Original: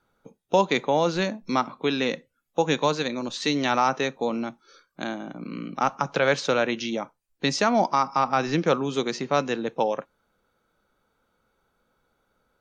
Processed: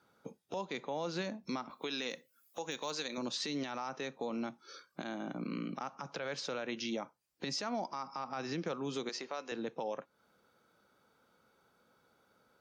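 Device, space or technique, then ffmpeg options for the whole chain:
broadcast voice chain: -filter_complex "[0:a]highpass=110,deesser=0.5,acompressor=threshold=-38dB:ratio=3,equalizer=frequency=5000:width_type=o:width=0.27:gain=6,alimiter=level_in=4.5dB:limit=-24dB:level=0:latency=1:release=58,volume=-4.5dB,asettb=1/sr,asplit=3[link_01][link_02][link_03];[link_01]atrim=end=1.704[link_04];[link_02]atrim=start=1.7:end=3.18,asetpts=PTS-STARTPTS,afade=type=in:duration=0.004:curve=qsin,afade=type=out:start_time=1.476:duration=0.004:curve=qsin,aemphasis=mode=production:type=bsi[link_05];[link_03]atrim=start=3.176[link_06];[link_04][link_05]acrossfade=duration=0.004:curve1=hsin:curve2=qsin[link_07];[link_07][link_06]acrossfade=duration=0.004:curve1=qsin:curve2=hsin,asettb=1/sr,asplit=3[link_08][link_09][link_10];[link_08]atrim=end=9.094[link_11];[link_09]atrim=start=9.09:end=9.52,asetpts=PTS-STARTPTS,afade=type=in:duration=0.004:curve=qsin,afade=type=out:start_time=0.426:duration=0.004:curve=qsin,highpass=440[link_12];[link_10]atrim=start=9.516[link_13];[link_11][link_12]acrossfade=duration=0.004:curve1=hsin:curve2=qsin[link_14];[link_14][link_13]acrossfade=duration=0.004:curve1=qsin:curve2=hsin,volume=1dB"

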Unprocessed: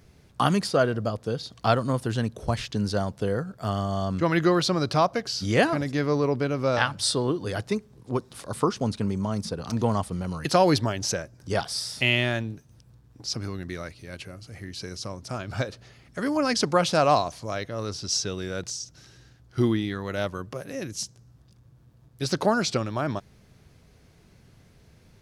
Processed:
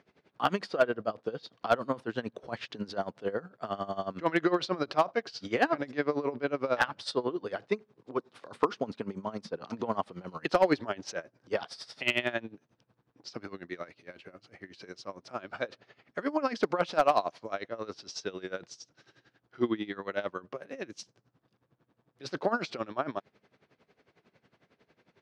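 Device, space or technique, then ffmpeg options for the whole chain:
helicopter radio: -af "highpass=300,lowpass=3000,aeval=exprs='val(0)*pow(10,-18*(0.5-0.5*cos(2*PI*11*n/s))/20)':channel_layout=same,asoftclip=type=hard:threshold=-15.5dB,volume=1.5dB"

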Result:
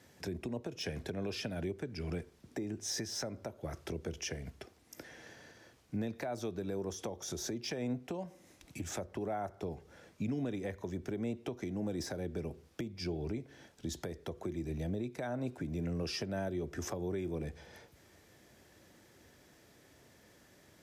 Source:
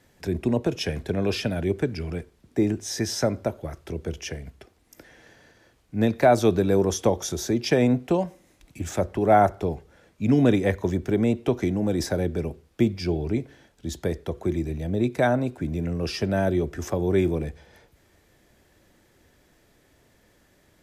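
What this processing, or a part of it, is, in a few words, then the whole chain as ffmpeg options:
broadcast voice chain: -af "highpass=76,deesser=0.65,acompressor=threshold=-34dB:ratio=3,equalizer=frequency=5600:width_type=o:width=0.53:gain=3.5,alimiter=level_in=3dB:limit=-24dB:level=0:latency=1:release=256,volume=-3dB,volume=-1dB"

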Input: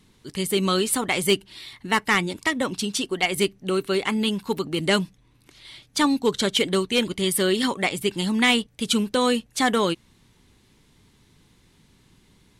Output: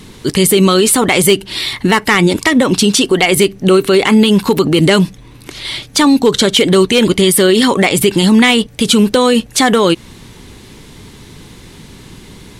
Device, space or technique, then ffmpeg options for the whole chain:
mastering chain: -af "equalizer=frequency=440:width_type=o:width=1:gain=3,acompressor=threshold=-23dB:ratio=2,asoftclip=type=hard:threshold=-15dB,alimiter=level_in=22.5dB:limit=-1dB:release=50:level=0:latency=1,volume=-1dB"

